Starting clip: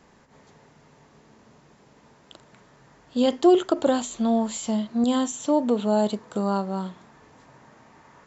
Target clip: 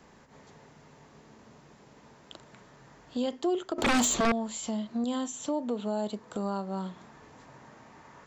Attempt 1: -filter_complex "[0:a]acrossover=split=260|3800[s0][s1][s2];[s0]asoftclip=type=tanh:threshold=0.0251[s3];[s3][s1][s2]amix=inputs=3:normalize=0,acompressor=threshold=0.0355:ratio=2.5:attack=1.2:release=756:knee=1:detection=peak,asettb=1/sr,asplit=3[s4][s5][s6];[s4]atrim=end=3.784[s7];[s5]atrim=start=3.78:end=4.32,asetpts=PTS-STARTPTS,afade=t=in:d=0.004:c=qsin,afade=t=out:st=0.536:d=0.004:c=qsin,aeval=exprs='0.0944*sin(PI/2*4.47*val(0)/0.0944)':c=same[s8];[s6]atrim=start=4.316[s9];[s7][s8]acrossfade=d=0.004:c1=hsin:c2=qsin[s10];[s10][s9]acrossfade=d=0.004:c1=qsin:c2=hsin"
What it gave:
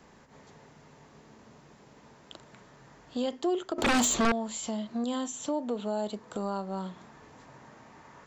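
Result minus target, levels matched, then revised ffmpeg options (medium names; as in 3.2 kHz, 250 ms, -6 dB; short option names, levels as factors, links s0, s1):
saturation: distortion +11 dB
-filter_complex "[0:a]acrossover=split=260|3800[s0][s1][s2];[s0]asoftclip=type=tanh:threshold=0.075[s3];[s3][s1][s2]amix=inputs=3:normalize=0,acompressor=threshold=0.0355:ratio=2.5:attack=1.2:release=756:knee=1:detection=peak,asettb=1/sr,asplit=3[s4][s5][s6];[s4]atrim=end=3.784[s7];[s5]atrim=start=3.78:end=4.32,asetpts=PTS-STARTPTS,afade=t=in:d=0.004:c=qsin,afade=t=out:st=0.536:d=0.004:c=qsin,aeval=exprs='0.0944*sin(PI/2*4.47*val(0)/0.0944)':c=same[s8];[s6]atrim=start=4.316[s9];[s7][s8]acrossfade=d=0.004:c1=hsin:c2=qsin[s10];[s10][s9]acrossfade=d=0.004:c1=qsin:c2=hsin"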